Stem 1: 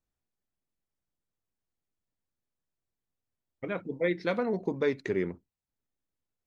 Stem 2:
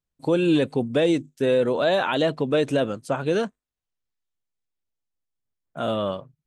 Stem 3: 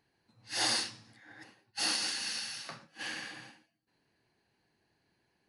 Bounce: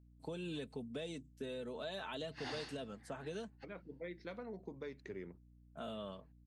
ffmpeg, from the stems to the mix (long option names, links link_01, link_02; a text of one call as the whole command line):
ffmpeg -i stem1.wav -i stem2.wav -i stem3.wav -filter_complex "[0:a]volume=-15.5dB[link_01];[1:a]aecho=1:1:4.6:0.48,volume=-16.5dB,asplit=2[link_02][link_03];[2:a]lowpass=2000,adelay=1850,volume=-3.5dB[link_04];[link_03]apad=whole_len=323612[link_05];[link_04][link_05]sidechaingate=range=-44dB:threshold=-60dB:ratio=16:detection=peak[link_06];[link_01][link_02][link_06]amix=inputs=3:normalize=0,acrossover=split=130|3000[link_07][link_08][link_09];[link_08]acompressor=threshold=-42dB:ratio=6[link_10];[link_07][link_10][link_09]amix=inputs=3:normalize=0,aeval=exprs='val(0)+0.000794*(sin(2*PI*60*n/s)+sin(2*PI*2*60*n/s)/2+sin(2*PI*3*60*n/s)/3+sin(2*PI*4*60*n/s)/4+sin(2*PI*5*60*n/s)/5)':channel_layout=same" out.wav